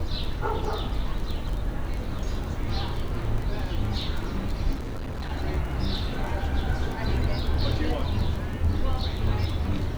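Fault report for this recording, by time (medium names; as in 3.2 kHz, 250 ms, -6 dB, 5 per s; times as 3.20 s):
crackle 16 per s -29 dBFS
4.74–5.32 s: clipped -28.5 dBFS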